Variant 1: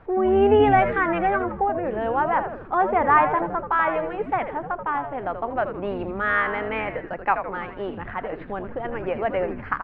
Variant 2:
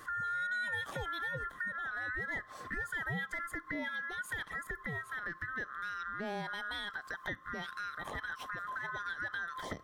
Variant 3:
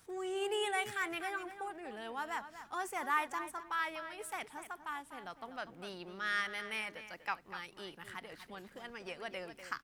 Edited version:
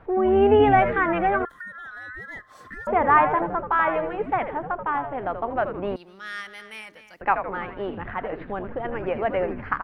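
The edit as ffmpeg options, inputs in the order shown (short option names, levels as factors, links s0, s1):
-filter_complex "[0:a]asplit=3[s0][s1][s2];[s0]atrim=end=1.452[s3];[1:a]atrim=start=1.448:end=2.872[s4];[s1]atrim=start=2.868:end=5.962[s5];[2:a]atrim=start=5.958:end=7.212[s6];[s2]atrim=start=7.208[s7];[s3][s4]acrossfade=d=0.004:c1=hsin:c2=hsin[s8];[s8][s5]acrossfade=d=0.004:c1=hsin:c2=hsin[s9];[s9][s6]acrossfade=d=0.004:c1=hsin:c2=hsin[s10];[s10][s7]acrossfade=d=0.004:c1=hsin:c2=hsin"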